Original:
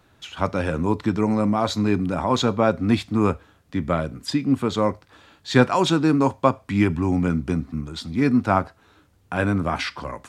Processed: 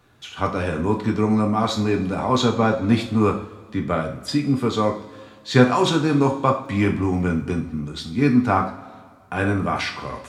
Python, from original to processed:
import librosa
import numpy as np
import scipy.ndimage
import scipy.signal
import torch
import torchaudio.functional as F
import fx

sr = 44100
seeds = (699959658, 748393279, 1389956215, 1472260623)

y = fx.dmg_crackle(x, sr, seeds[0], per_s=18.0, level_db=-43.0, at=(5.55, 7.44), fade=0.02)
y = fx.rev_double_slope(y, sr, seeds[1], early_s=0.39, late_s=1.9, knee_db=-17, drr_db=1.5)
y = y * 10.0 ** (-1.0 / 20.0)